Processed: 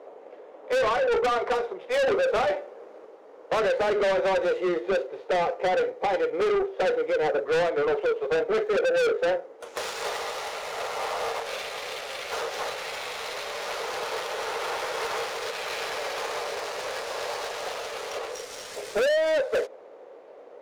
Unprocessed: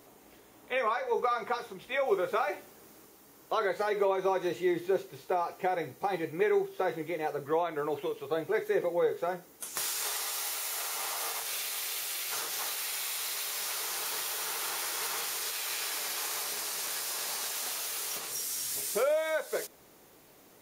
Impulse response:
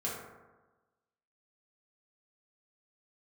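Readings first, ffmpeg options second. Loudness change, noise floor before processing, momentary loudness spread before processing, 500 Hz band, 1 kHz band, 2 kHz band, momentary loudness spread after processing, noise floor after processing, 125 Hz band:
+4.5 dB, −58 dBFS, 5 LU, +7.5 dB, +5.0 dB, +6.0 dB, 10 LU, −48 dBFS, +2.0 dB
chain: -af "highpass=frequency=510:width_type=q:width=4.9,adynamicsmooth=sensitivity=6:basefreq=1700,asoftclip=type=tanh:threshold=-28.5dB,volume=7.5dB"

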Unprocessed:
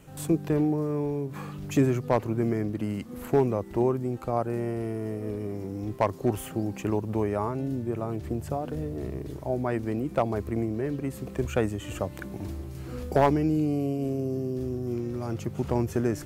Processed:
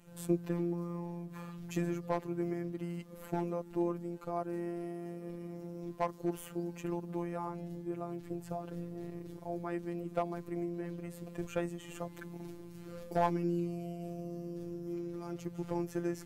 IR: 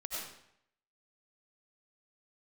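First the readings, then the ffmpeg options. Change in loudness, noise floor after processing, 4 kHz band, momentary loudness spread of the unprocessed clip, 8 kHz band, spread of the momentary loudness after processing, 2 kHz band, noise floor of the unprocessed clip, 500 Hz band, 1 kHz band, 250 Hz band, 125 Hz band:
−9.5 dB, −51 dBFS, −9.0 dB, 9 LU, −9.0 dB, 9 LU, −9.0 dB, −41 dBFS, −10.5 dB, −8.0 dB, −9.0 dB, −11.0 dB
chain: -af "afftfilt=real='hypot(re,im)*cos(PI*b)':imag='0':win_size=1024:overlap=0.75,volume=-5.5dB"

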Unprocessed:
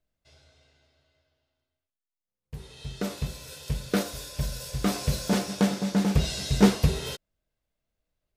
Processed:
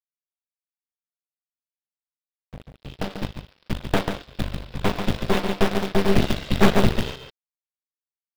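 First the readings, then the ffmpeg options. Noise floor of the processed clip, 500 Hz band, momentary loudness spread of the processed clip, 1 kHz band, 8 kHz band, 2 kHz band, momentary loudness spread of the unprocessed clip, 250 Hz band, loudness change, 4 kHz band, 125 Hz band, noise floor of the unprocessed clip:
below −85 dBFS, +6.5 dB, 15 LU, +7.5 dB, −5.5 dB, +7.5 dB, 19 LU, +1.5 dB, +3.0 dB, +2.5 dB, +1.0 dB, below −85 dBFS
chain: -filter_complex "[0:a]aresample=8000,aresample=44100,aresample=11025,acrusher=bits=5:mix=0:aa=0.5,aresample=44100,acompressor=mode=upward:threshold=-44dB:ratio=2.5,asplit=2[link_01][link_02];[link_02]acrusher=bits=2:mode=log:mix=0:aa=0.000001,volume=-7dB[link_03];[link_01][link_03]amix=inputs=2:normalize=0,aecho=1:1:141:0.562,aeval=exprs='0.891*(cos(1*acos(clip(val(0)/0.891,-1,1)))-cos(1*PI/2))+0.355*(cos(8*acos(clip(val(0)/0.891,-1,1)))-cos(8*PI/2))':channel_layout=same,volume=-5dB"

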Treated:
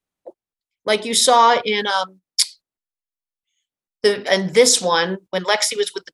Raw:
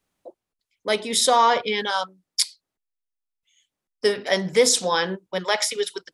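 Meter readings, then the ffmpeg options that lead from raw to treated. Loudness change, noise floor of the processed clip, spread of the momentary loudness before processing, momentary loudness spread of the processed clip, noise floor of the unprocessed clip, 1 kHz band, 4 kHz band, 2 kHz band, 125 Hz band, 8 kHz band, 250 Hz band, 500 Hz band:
+4.5 dB, below −85 dBFS, 10 LU, 10 LU, below −85 dBFS, +4.5 dB, +4.5 dB, +4.5 dB, +4.5 dB, +4.5 dB, +4.5 dB, +4.5 dB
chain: -af "agate=range=-14dB:threshold=-42dB:ratio=16:detection=peak,volume=4.5dB"

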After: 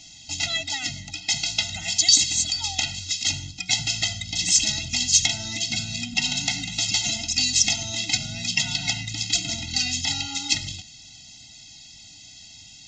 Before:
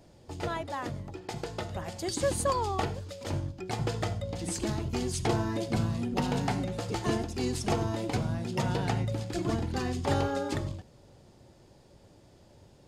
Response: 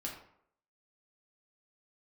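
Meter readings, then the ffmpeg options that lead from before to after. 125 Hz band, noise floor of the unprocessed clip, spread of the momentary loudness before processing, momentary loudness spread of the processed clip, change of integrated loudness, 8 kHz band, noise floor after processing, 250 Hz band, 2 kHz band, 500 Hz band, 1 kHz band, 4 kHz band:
−4.0 dB, −57 dBFS, 8 LU, 8 LU, +9.5 dB, +19.5 dB, −46 dBFS, −5.5 dB, +11.5 dB, −13.5 dB, −6.5 dB, +20.5 dB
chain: -af "bandreject=frequency=4800:width=14,acompressor=threshold=-31dB:ratio=6,aexciter=amount=11.6:drive=8.9:freq=2000,aresample=16000,aresample=44100,afftfilt=real='re*eq(mod(floor(b*sr/1024/310),2),0)':imag='im*eq(mod(floor(b*sr/1024/310),2),0)':win_size=1024:overlap=0.75"

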